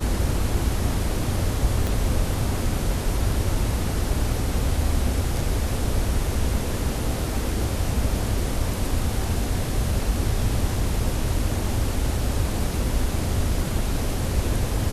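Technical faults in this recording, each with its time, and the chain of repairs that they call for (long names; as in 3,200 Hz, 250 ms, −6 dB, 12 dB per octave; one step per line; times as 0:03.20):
0:01.87: click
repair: click removal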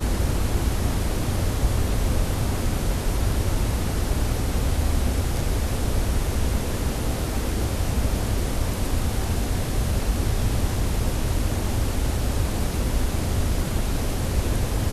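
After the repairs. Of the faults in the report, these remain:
0:01.87: click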